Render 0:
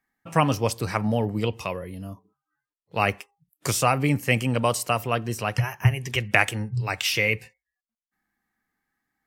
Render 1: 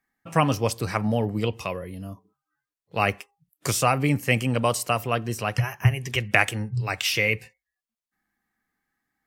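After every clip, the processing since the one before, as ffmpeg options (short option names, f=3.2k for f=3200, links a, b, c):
-af "bandreject=f=910:w=22"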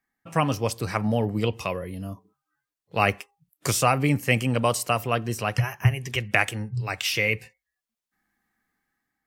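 -af "dynaudnorm=f=350:g=5:m=6dB,volume=-2.5dB"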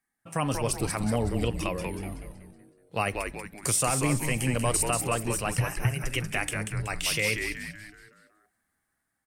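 -filter_complex "[0:a]equalizer=f=9.3k:w=2.4:g=14,alimiter=limit=-11dB:level=0:latency=1:release=56,asplit=2[a][b];[b]asplit=6[c][d][e][f][g][h];[c]adelay=187,afreqshift=-140,volume=-5dB[i];[d]adelay=374,afreqshift=-280,volume=-11.9dB[j];[e]adelay=561,afreqshift=-420,volume=-18.9dB[k];[f]adelay=748,afreqshift=-560,volume=-25.8dB[l];[g]adelay=935,afreqshift=-700,volume=-32.7dB[m];[h]adelay=1122,afreqshift=-840,volume=-39.7dB[n];[i][j][k][l][m][n]amix=inputs=6:normalize=0[o];[a][o]amix=inputs=2:normalize=0,volume=-3.5dB"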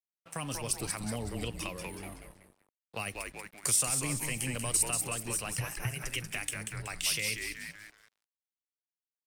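-filter_complex "[0:a]aeval=exprs='sgn(val(0))*max(abs(val(0))-0.00316,0)':c=same,lowshelf=f=470:g=-9.5,acrossover=split=290|3000[a][b][c];[b]acompressor=threshold=-40dB:ratio=4[d];[a][d][c]amix=inputs=3:normalize=0"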